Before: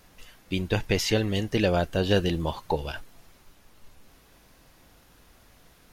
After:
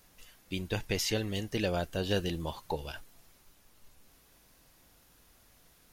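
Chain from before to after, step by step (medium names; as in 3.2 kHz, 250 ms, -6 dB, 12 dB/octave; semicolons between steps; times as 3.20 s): treble shelf 5.1 kHz +8.5 dB; trim -8 dB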